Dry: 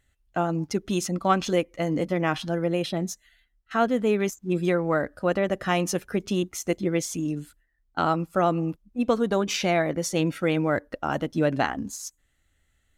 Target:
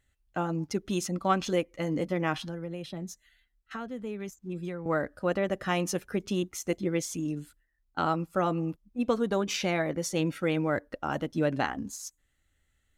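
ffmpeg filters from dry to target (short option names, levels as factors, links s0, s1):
-filter_complex "[0:a]bandreject=f=680:w=17,asettb=1/sr,asplit=3[s0][s1][s2];[s0]atrim=end=2.424[s3];[s1]atrim=start=2.42:end=4.86,asetpts=PTS-STARTPTS,afade=t=in:d=0.004:c=qsin,afade=t=out:st=2.436:d=0.004:c=qsin,acrossover=split=140[s4][s5];[s5]acompressor=threshold=0.0178:ratio=3[s6];[s4][s6]amix=inputs=2:normalize=0[s7];[s2]atrim=start=4.856[s8];[s3][s7]acrossfade=d=0.004:c1=hsin:c2=qsin[s9];[s9][s8]acrossfade=d=0.004:c1=qsin:c2=hsin,volume=0.631"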